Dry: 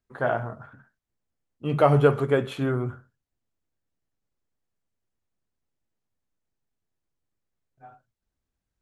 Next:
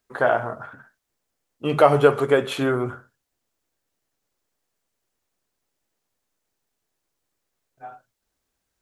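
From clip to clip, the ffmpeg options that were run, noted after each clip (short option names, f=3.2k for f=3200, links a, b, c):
-filter_complex "[0:a]bass=f=250:g=-11,treble=f=4k:g=3,asplit=2[a][b];[b]acompressor=threshold=-30dB:ratio=6,volume=1dB[c];[a][c]amix=inputs=2:normalize=0,volume=3dB"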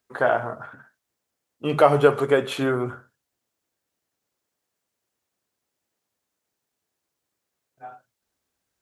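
-af "highpass=71,volume=-1dB"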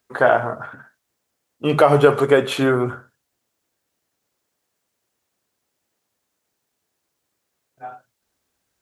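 -af "alimiter=level_in=6.5dB:limit=-1dB:release=50:level=0:latency=1,volume=-1dB"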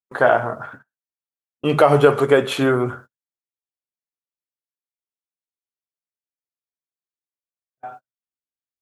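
-af "agate=range=-31dB:threshold=-39dB:ratio=16:detection=peak"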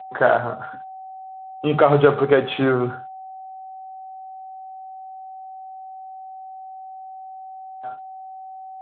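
-af "aeval=exprs='val(0)+0.0224*sin(2*PI*760*n/s)':c=same,volume=-1.5dB" -ar 8000 -c:a libspeex -b:a 18k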